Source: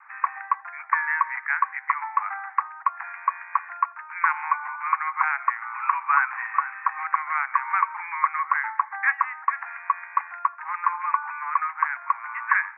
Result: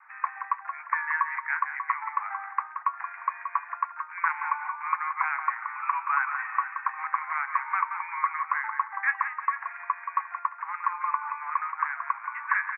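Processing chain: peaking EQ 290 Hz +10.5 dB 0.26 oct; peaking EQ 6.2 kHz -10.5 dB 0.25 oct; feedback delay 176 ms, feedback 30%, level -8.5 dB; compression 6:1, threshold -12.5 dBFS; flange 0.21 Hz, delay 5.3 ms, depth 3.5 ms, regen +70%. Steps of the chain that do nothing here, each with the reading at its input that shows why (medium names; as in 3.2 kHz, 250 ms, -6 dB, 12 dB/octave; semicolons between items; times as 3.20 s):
peaking EQ 290 Hz: input has nothing below 680 Hz; peaking EQ 6.2 kHz: input has nothing above 2.6 kHz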